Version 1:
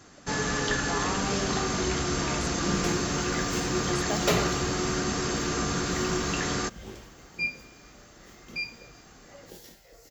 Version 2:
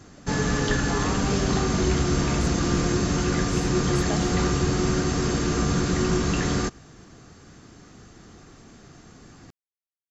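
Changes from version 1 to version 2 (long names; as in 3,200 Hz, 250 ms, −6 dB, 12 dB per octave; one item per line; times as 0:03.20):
first sound: add low-shelf EQ 350 Hz +10 dB
second sound: muted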